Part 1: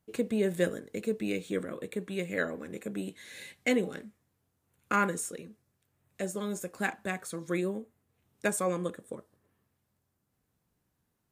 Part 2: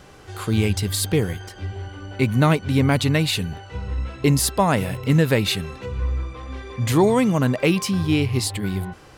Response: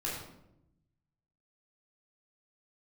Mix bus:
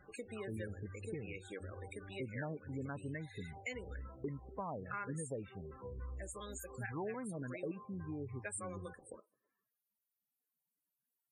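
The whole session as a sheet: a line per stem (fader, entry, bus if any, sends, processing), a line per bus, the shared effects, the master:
−3.0 dB, 0.00 s, no send, high-pass filter 1,000 Hz 6 dB per octave; high-shelf EQ 5,400 Hz +7.5 dB
−17.0 dB, 0.00 s, no send, auto-filter low-pass saw down 3.5 Hz 340–2,100 Hz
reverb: not used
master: spectral peaks only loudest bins 32; downward compressor 2.5 to 1, threshold −44 dBFS, peak gain reduction 12.5 dB

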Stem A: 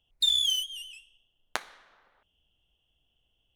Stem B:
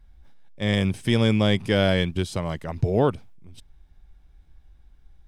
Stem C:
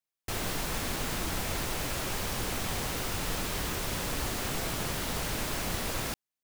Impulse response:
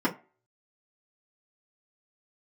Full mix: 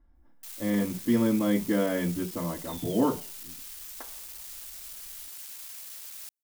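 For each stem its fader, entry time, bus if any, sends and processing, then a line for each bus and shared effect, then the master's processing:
−3.0 dB, 2.45 s, bus A, send −24 dB, no processing
−8.0 dB, 0.00 s, bus A, send −12.5 dB, parametric band 1,100 Hz +3.5 dB 0.99 octaves
−3.5 dB, 0.15 s, no bus, no send, gain into a clipping stage and back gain 34 dB; first difference
bus A: 0.0 dB, low-pass filter 1,200 Hz 24 dB per octave; brickwall limiter −28 dBFS, peak gain reduction 11 dB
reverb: on, RT60 0.35 s, pre-delay 3 ms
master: no processing

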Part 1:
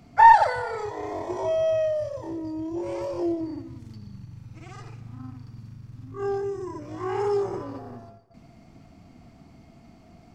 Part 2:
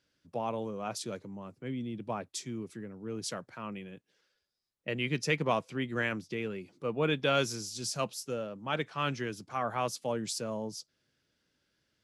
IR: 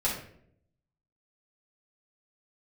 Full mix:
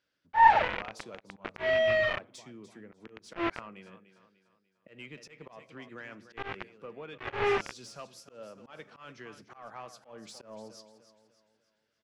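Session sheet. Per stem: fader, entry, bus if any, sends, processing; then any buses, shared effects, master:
+2.0 dB, 0.15 s, no send, no echo send, bit reduction 4 bits; transistor ladder low-pass 3,000 Hz, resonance 35%
−7.0 dB, 0.00 s, send −21.5 dB, echo send −12 dB, downward compressor 6 to 1, threshold −36 dBFS, peak gain reduction 12.5 dB; mid-hump overdrive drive 11 dB, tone 2,300 Hz, clips at −24.5 dBFS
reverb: on, RT60 0.65 s, pre-delay 4 ms
echo: repeating echo 296 ms, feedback 42%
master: volume swells 133 ms

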